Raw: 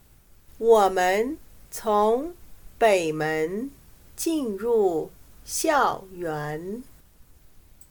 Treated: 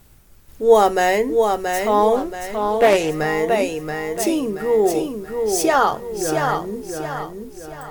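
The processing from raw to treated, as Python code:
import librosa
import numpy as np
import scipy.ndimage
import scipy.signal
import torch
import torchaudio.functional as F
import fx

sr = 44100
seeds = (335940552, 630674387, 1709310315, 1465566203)

y = fx.echo_feedback(x, sr, ms=678, feedback_pct=40, wet_db=-5)
y = fx.doppler_dist(y, sr, depth_ms=0.18, at=(2.16, 3.11))
y = F.gain(torch.from_numpy(y), 4.5).numpy()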